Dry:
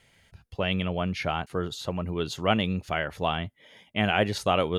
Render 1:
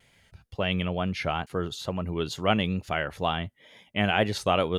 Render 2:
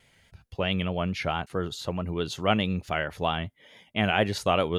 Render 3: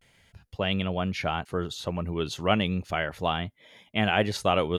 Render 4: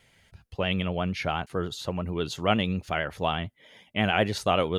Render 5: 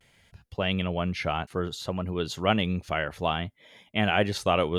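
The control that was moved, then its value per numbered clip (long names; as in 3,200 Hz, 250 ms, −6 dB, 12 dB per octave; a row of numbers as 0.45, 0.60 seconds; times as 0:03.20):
pitch vibrato, speed: 2.2, 4.6, 0.34, 11, 0.61 Hertz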